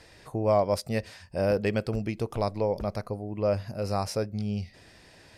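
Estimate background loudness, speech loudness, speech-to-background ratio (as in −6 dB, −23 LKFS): −48.5 LKFS, −29.5 LKFS, 19.0 dB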